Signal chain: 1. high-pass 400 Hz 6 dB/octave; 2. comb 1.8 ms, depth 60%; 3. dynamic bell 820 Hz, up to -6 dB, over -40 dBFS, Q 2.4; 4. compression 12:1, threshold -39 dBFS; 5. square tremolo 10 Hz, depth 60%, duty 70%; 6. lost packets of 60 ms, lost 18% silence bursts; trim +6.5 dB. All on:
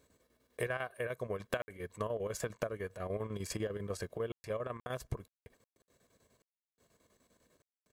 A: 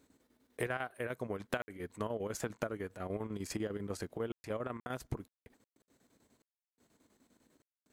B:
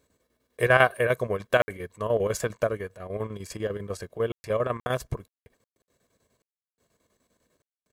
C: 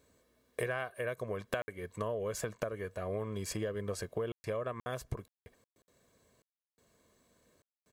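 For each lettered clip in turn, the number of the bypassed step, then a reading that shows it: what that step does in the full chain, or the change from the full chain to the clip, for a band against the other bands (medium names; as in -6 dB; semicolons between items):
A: 2, 250 Hz band +4.5 dB; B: 4, mean gain reduction 8.5 dB; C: 5, loudness change +1.0 LU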